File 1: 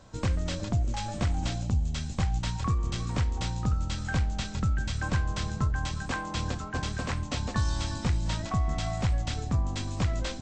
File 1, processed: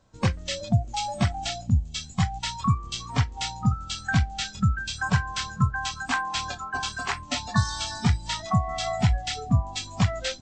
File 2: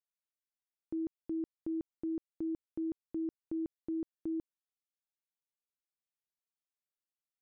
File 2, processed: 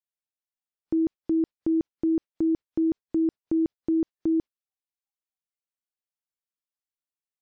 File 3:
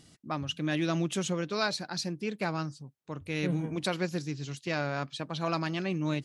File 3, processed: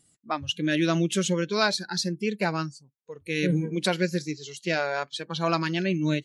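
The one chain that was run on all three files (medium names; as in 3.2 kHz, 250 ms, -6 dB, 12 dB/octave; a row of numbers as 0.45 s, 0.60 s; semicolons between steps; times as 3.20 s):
spectral noise reduction 18 dB; normalise loudness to -27 LUFS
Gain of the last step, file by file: +8.0 dB, +12.5 dB, +6.5 dB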